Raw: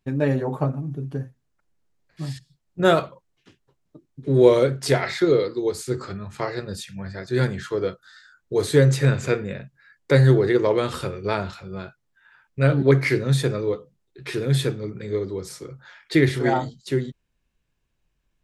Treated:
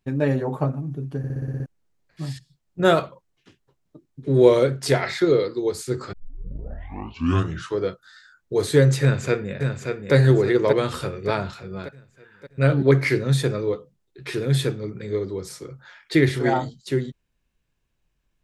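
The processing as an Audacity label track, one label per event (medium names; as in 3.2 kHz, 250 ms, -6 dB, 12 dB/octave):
1.180000	1.180000	stutter in place 0.06 s, 8 plays
6.130000	6.130000	tape start 1.66 s
9.020000	10.140000	echo throw 580 ms, feedback 50%, level -5.5 dB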